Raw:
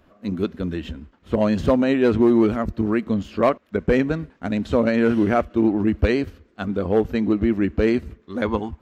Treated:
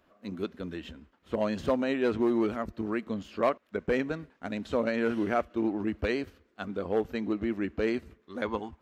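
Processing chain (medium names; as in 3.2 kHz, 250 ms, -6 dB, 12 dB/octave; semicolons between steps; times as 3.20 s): bass shelf 230 Hz -10.5 dB; trim -6.5 dB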